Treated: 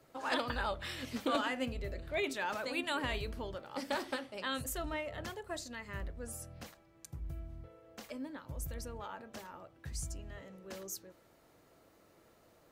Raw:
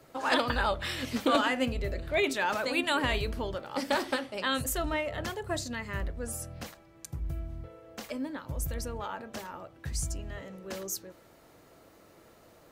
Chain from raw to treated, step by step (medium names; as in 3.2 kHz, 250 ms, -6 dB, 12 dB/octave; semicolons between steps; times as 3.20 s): 5.40–5.87 s: peaking EQ 120 Hz -14.5 dB -> -8 dB 1.3 oct; trim -7.5 dB